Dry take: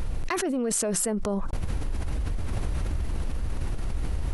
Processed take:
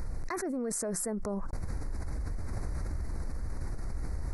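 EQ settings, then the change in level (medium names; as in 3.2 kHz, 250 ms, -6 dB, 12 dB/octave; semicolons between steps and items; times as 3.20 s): Chebyshev band-stop 2–4.6 kHz, order 2; dynamic bell 4 kHz, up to -6 dB, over -47 dBFS, Q 0.84; -5.5 dB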